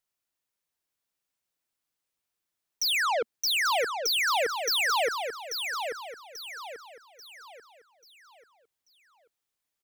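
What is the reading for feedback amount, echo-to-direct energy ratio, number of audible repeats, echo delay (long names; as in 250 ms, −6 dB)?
39%, −6.0 dB, 4, 838 ms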